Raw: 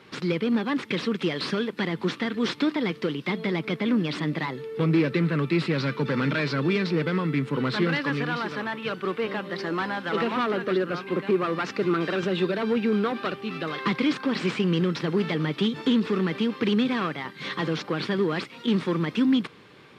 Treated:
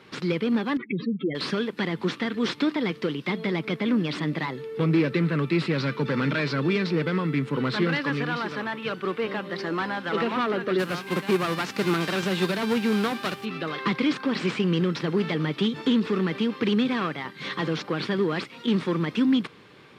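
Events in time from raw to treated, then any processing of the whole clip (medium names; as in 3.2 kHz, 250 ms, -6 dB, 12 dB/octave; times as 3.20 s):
0.77–1.35 s: spectral contrast enhancement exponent 3.7
10.78–13.44 s: formants flattened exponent 0.6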